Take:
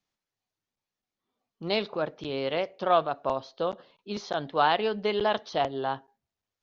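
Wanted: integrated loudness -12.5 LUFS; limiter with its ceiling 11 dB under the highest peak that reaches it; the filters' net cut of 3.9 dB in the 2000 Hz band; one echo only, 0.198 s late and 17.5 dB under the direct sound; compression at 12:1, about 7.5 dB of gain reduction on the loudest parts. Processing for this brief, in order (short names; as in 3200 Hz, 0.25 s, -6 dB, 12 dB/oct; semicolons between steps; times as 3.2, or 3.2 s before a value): bell 2000 Hz -5.5 dB; compressor 12:1, threshold -25 dBFS; limiter -27 dBFS; echo 0.198 s -17.5 dB; gain +25.5 dB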